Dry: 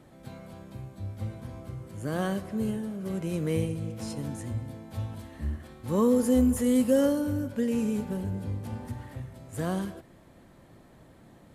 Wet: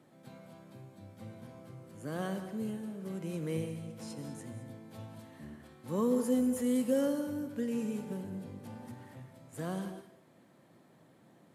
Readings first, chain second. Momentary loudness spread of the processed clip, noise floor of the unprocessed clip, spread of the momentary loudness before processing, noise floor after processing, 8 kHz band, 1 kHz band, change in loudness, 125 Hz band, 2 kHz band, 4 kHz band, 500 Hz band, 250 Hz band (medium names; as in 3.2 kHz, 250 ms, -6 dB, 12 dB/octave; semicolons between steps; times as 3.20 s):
21 LU, -55 dBFS, 18 LU, -63 dBFS, -6.5 dB, -6.5 dB, -6.0 dB, -10.0 dB, -6.5 dB, -6.5 dB, -6.5 dB, -6.5 dB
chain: high-pass 130 Hz 24 dB/octave; gated-style reverb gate 230 ms rising, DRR 10 dB; trim -7 dB